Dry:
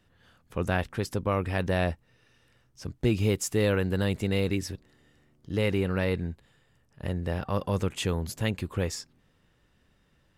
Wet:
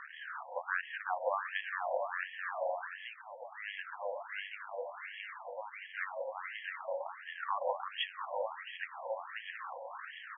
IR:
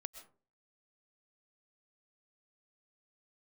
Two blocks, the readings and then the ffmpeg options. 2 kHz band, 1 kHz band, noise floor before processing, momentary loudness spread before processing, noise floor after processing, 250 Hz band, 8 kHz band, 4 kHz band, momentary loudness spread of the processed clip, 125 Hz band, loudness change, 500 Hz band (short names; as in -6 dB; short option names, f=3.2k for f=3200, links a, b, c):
-2.0 dB, +0.5 dB, -67 dBFS, 13 LU, -51 dBFS, under -40 dB, under -40 dB, -6.5 dB, 9 LU, under -40 dB, -10.5 dB, -9.0 dB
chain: -filter_complex "[0:a]aeval=exprs='val(0)+0.5*0.0141*sgn(val(0))':c=same[a];[1:a]atrim=start_sample=2205[b];[a][b]afir=irnorm=-1:irlink=0,adynamicsmooth=sensitivity=1.5:basefreq=1.5k,aecho=1:1:370|666|902.8|1092|1244:0.631|0.398|0.251|0.158|0.1,acompressor=threshold=-35dB:ratio=6,bandreject=f=620:w=12,aexciter=amount=4.6:drive=9.8:freq=3.9k,afftfilt=real='re*between(b*sr/1024,690*pow(2400/690,0.5+0.5*sin(2*PI*1.4*pts/sr))/1.41,690*pow(2400/690,0.5+0.5*sin(2*PI*1.4*pts/sr))*1.41)':imag='im*between(b*sr/1024,690*pow(2400/690,0.5+0.5*sin(2*PI*1.4*pts/sr))/1.41,690*pow(2400/690,0.5+0.5*sin(2*PI*1.4*pts/sr))*1.41)':win_size=1024:overlap=0.75,volume=13.5dB"